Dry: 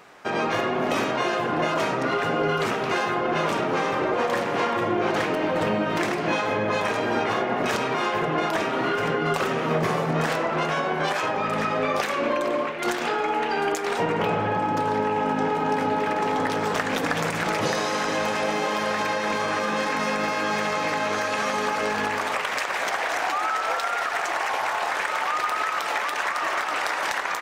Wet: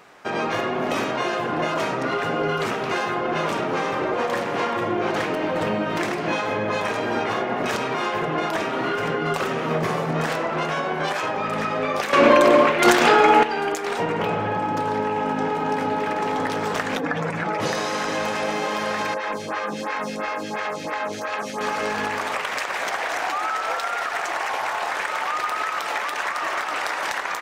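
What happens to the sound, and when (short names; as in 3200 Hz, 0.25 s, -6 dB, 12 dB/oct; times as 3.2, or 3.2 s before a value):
12.13–13.43 gain +10.5 dB
16.97–17.6 spectral contrast raised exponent 1.6
19.14–21.61 photocell phaser 2.9 Hz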